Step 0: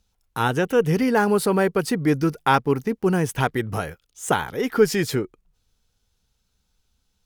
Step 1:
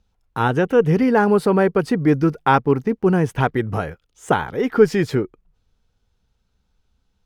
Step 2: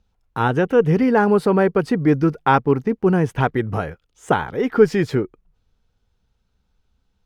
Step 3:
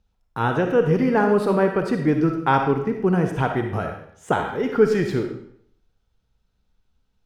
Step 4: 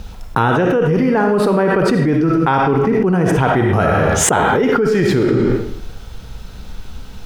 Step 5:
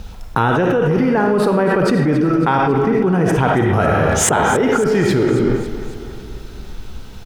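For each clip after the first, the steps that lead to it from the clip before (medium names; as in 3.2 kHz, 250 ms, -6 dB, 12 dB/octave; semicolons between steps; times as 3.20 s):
low-pass 1.7 kHz 6 dB/octave; trim +4 dB
treble shelf 5.9 kHz -5 dB
reverberation RT60 0.65 s, pre-delay 15 ms, DRR 4 dB; trim -3.5 dB
level flattener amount 100%; trim -3 dB
feedback delay 275 ms, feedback 59%, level -14 dB; trim -1 dB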